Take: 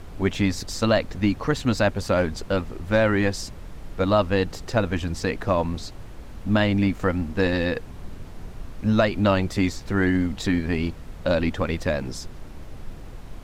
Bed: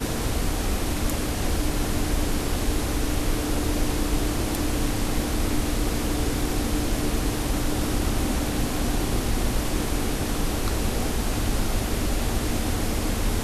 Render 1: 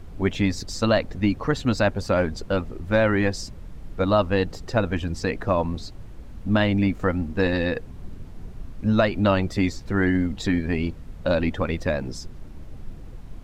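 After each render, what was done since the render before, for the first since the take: noise reduction 7 dB, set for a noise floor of -39 dBFS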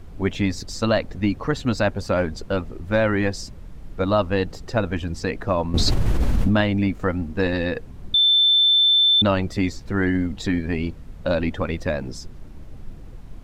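5.74–6.61 s: level flattener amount 100%; 8.14–9.22 s: bleep 3.54 kHz -13 dBFS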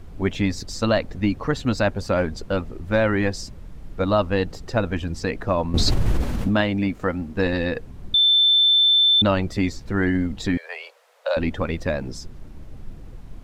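6.21–7.37 s: bass shelf 100 Hz -8.5 dB; 10.57–11.37 s: steep high-pass 480 Hz 72 dB/octave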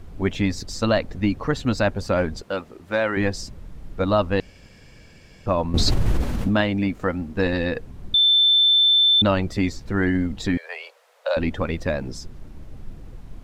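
2.41–3.17 s: high-pass 470 Hz 6 dB/octave; 4.40–5.46 s: room tone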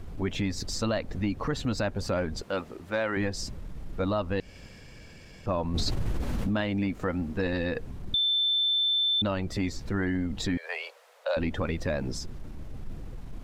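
transient shaper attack -5 dB, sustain +1 dB; compression, threshold -25 dBFS, peak gain reduction 10 dB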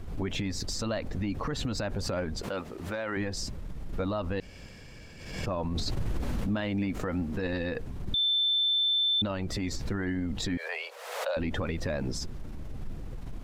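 peak limiter -23 dBFS, peak gain reduction 7.5 dB; swell ahead of each attack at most 57 dB/s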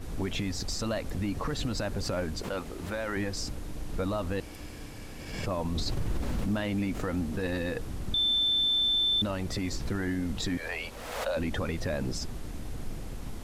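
add bed -20 dB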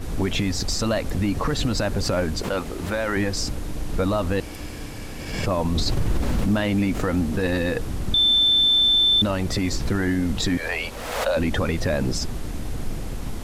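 trim +8.5 dB

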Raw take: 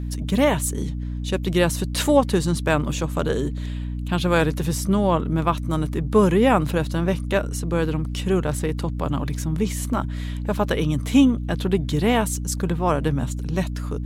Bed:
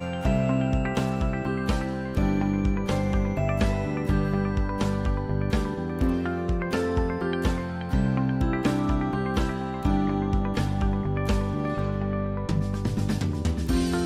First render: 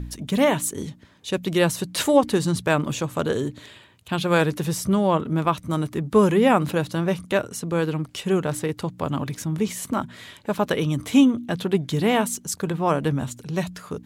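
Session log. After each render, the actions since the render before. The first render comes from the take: de-hum 60 Hz, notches 5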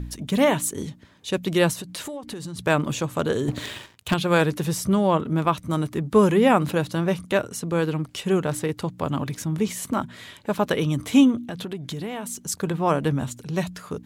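1.73–2.59 s: compression 16:1, threshold -30 dBFS; 3.48–4.14 s: waveshaping leveller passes 3; 11.36–12.44 s: compression, threshold -28 dBFS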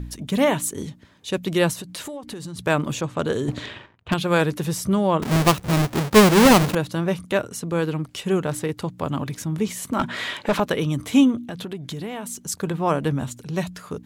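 3.01–4.12 s: level-controlled noise filter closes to 1.2 kHz, open at -19.5 dBFS; 5.22–6.75 s: square wave that keeps the level; 9.99–10.60 s: overdrive pedal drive 24 dB, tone 2.3 kHz, clips at -10.5 dBFS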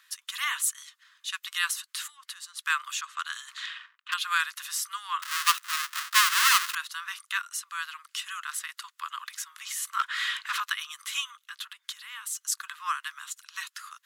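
steep high-pass 1.1 kHz 72 dB/octave; band-stop 2.3 kHz, Q 12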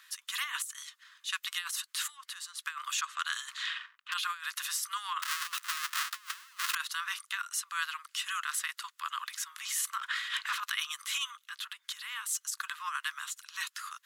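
transient shaper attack -7 dB, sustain -2 dB; compressor with a negative ratio -34 dBFS, ratio -0.5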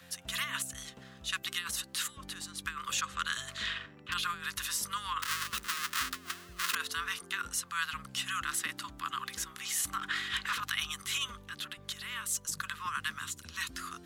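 add bed -27.5 dB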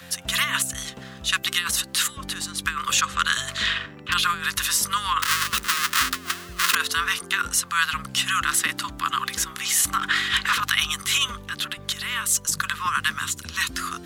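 trim +12 dB

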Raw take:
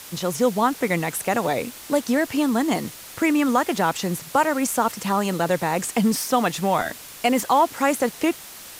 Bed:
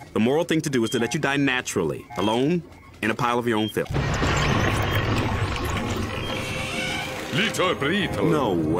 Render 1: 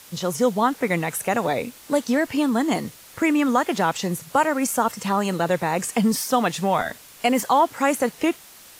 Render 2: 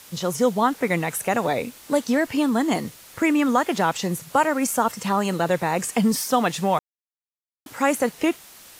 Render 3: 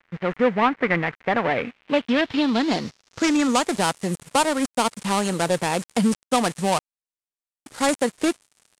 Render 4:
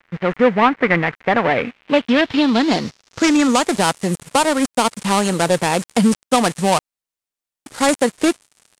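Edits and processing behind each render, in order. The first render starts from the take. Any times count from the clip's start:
noise print and reduce 6 dB
6.79–7.66 s: mute
dead-time distortion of 0.19 ms; low-pass sweep 2 kHz -> 9 kHz, 1.42–3.75 s
trim +5.5 dB; peak limiter -1 dBFS, peak gain reduction 2.5 dB

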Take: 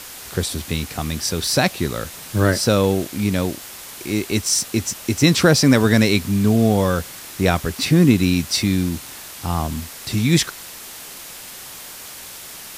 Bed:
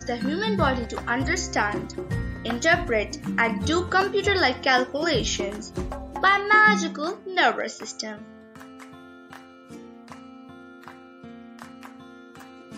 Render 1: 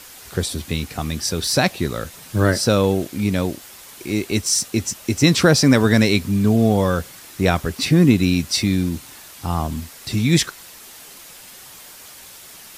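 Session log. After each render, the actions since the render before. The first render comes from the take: noise reduction 6 dB, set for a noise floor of -37 dBFS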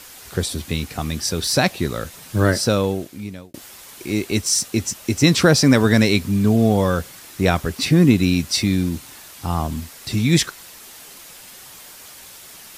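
2.56–3.54 s: fade out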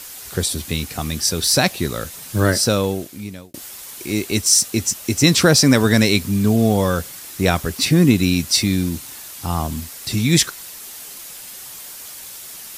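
treble shelf 4.9 kHz +8 dB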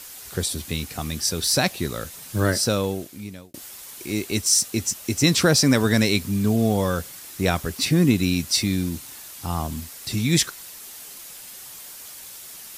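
trim -4.5 dB

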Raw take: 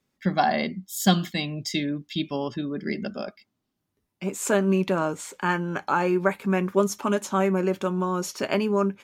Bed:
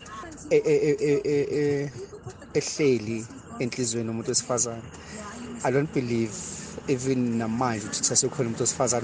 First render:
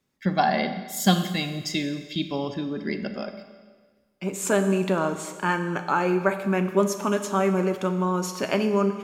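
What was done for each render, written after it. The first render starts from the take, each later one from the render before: Schroeder reverb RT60 1.5 s, combs from 29 ms, DRR 8.5 dB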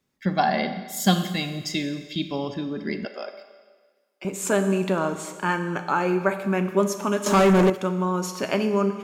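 3.05–4.25 s: high-pass 380 Hz 24 dB/octave; 7.26–7.70 s: waveshaping leveller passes 3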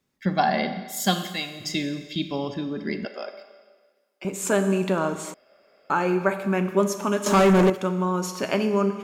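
0.89–1.60 s: high-pass 200 Hz -> 790 Hz 6 dB/octave; 5.34–5.90 s: room tone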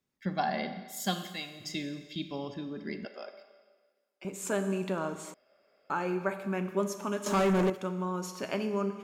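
trim -9 dB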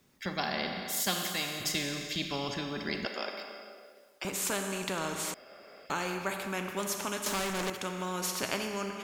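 gain riding within 5 dB 0.5 s; spectrum-flattening compressor 2:1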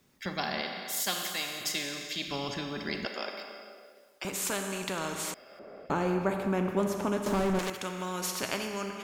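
0.61–2.28 s: high-pass 370 Hz 6 dB/octave; 5.59–7.59 s: tilt shelf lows +10 dB, about 1.3 kHz

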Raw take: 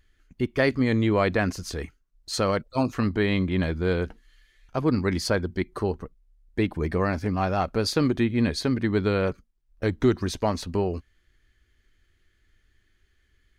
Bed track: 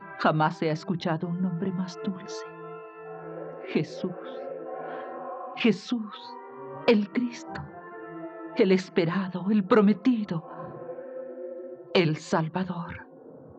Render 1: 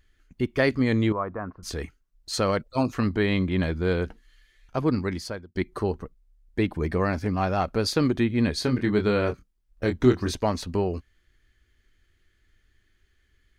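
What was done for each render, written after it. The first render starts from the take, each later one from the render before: 1.12–1.63 s: four-pole ladder low-pass 1.3 kHz, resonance 60%; 4.84–5.55 s: fade out; 8.55–10.35 s: doubling 24 ms -6 dB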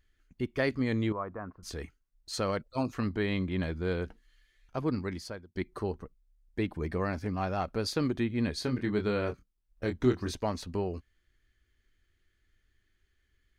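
trim -7 dB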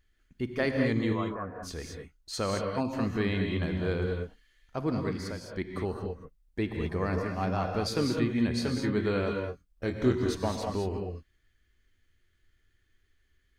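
gated-style reverb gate 240 ms rising, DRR 2.5 dB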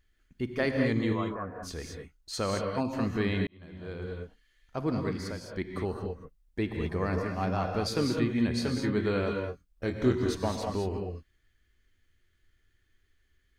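3.47–4.82 s: fade in

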